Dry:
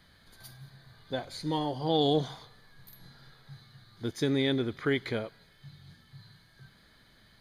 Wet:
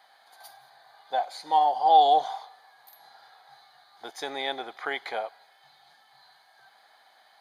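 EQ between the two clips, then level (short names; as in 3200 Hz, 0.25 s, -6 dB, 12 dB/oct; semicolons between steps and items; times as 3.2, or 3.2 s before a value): resonant high-pass 770 Hz, resonance Q 8.9; 0.0 dB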